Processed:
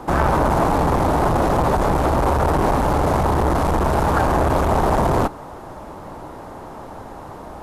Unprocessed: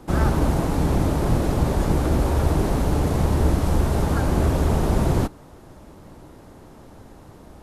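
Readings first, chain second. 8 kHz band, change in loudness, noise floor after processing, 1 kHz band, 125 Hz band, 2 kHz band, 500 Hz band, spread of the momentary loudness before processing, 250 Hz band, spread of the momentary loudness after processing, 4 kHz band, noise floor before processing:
+0.5 dB, +3.5 dB, -36 dBFS, +11.0 dB, -1.0 dB, +7.5 dB, +6.5 dB, 2 LU, +1.5 dB, 18 LU, +2.0 dB, -46 dBFS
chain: saturation -22 dBFS, distortion -9 dB; peaking EQ 910 Hz +12 dB 1.9 oct; trim +4.5 dB

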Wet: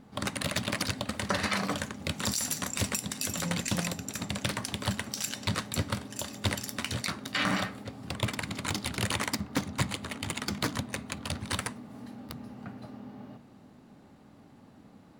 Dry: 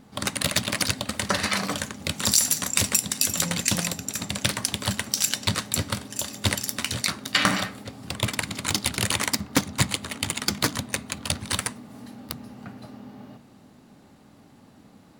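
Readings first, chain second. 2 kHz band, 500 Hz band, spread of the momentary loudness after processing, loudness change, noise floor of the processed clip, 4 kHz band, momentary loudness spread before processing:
-5.5 dB, -3.5 dB, 14 LU, -7.5 dB, -55 dBFS, -8.0 dB, 16 LU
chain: treble shelf 3.3 kHz -7.5 dB; peak limiter -14 dBFS, peak gain reduction 7.5 dB; trim -2 dB

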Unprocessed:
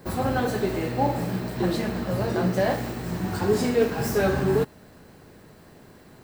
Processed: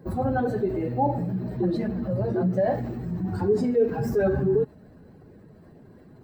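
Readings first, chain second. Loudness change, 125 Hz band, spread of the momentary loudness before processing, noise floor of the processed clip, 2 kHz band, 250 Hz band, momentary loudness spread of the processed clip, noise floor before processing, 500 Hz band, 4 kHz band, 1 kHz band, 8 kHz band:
-0.5 dB, 0.0 dB, 7 LU, -51 dBFS, -7.5 dB, 0.0 dB, 7 LU, -51 dBFS, +0.5 dB, under -15 dB, -1.5 dB, under -15 dB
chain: spectral contrast enhancement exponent 1.7

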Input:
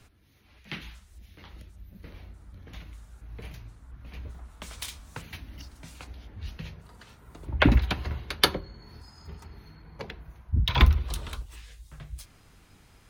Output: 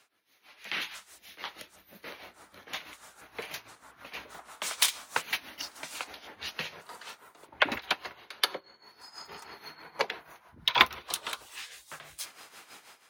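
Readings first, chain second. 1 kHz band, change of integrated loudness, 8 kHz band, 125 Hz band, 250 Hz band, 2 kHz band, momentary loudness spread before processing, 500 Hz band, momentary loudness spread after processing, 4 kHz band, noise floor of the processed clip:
+2.0 dB, -4.5 dB, +7.5 dB, -27.5 dB, -14.0 dB, +2.5 dB, 24 LU, -3.0 dB, 22 LU, +2.0 dB, -64 dBFS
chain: high-pass 600 Hz 12 dB/octave; level rider gain up to 15.5 dB; tremolo 6.2 Hz, depth 72%; trim -1 dB

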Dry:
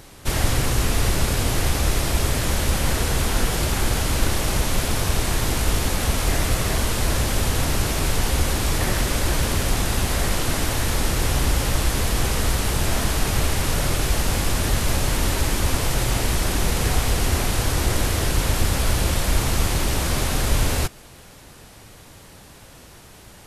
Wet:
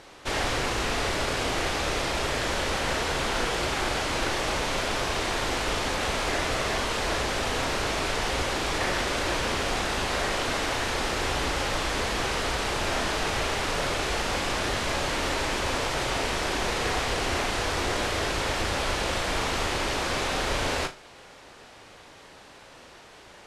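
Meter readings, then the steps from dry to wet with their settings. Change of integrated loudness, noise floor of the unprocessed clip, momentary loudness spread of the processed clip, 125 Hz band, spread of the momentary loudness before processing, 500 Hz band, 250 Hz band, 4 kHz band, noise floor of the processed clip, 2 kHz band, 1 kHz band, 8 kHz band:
-4.5 dB, -45 dBFS, 1 LU, -13.0 dB, 1 LU, -0.5 dB, -6.0 dB, -2.0 dB, -49 dBFS, +0.5 dB, +0.5 dB, -8.5 dB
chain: low-pass 6.4 kHz 12 dB/octave; tone controls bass -14 dB, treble -4 dB; flutter echo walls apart 6.3 m, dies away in 0.24 s

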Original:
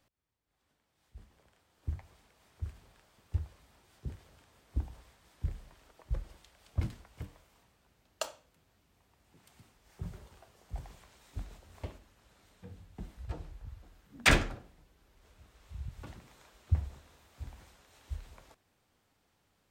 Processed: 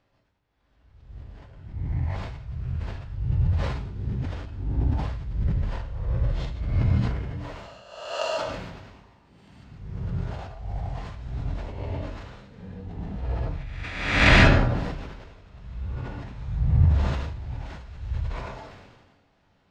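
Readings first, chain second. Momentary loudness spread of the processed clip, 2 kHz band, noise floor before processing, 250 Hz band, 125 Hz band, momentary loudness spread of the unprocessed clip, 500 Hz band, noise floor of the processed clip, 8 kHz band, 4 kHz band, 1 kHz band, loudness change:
21 LU, +10.5 dB, -75 dBFS, +14.5 dB, +15.0 dB, 19 LU, +13.5 dB, -65 dBFS, -0.5 dB, +8.5 dB, +12.5 dB, +11.0 dB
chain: reverse spectral sustain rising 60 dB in 0.99 s; distance through air 180 m; gated-style reverb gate 170 ms rising, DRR -4 dB; decay stretcher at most 38 dB/s; trim +1.5 dB

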